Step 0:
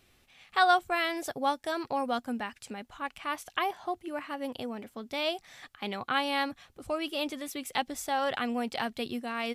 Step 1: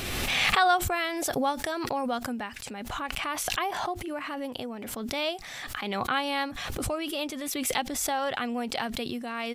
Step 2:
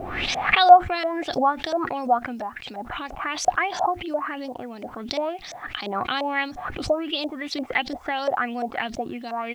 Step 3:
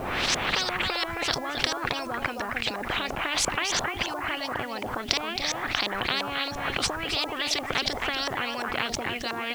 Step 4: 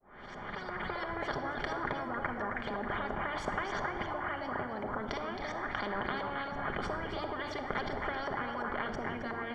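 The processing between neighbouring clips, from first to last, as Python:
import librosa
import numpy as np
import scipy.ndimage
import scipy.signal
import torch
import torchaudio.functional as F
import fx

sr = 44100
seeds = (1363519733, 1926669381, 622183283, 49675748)

y1 = fx.pre_swell(x, sr, db_per_s=24.0)
y2 = fx.filter_lfo_lowpass(y1, sr, shape='saw_up', hz=2.9, low_hz=580.0, high_hz=6600.0, q=5.4)
y2 = fx.quant_dither(y2, sr, seeds[0], bits=10, dither='none')
y2 = fx.small_body(y2, sr, hz=(320.0, 720.0), ring_ms=30, db=6)
y2 = F.gain(torch.from_numpy(y2), -1.5).numpy()
y3 = y2 + 10.0 ** (-13.0 / 20.0) * np.pad(y2, (int(268 * sr / 1000.0), 0))[:len(y2)]
y3 = fx.spectral_comp(y3, sr, ratio=10.0)
y4 = fx.fade_in_head(y3, sr, length_s=1.07)
y4 = scipy.signal.savgol_filter(y4, 41, 4, mode='constant')
y4 = fx.room_shoebox(y4, sr, seeds[1], volume_m3=3100.0, walls='mixed', distance_m=1.3)
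y4 = F.gain(torch.from_numpy(y4), -5.5).numpy()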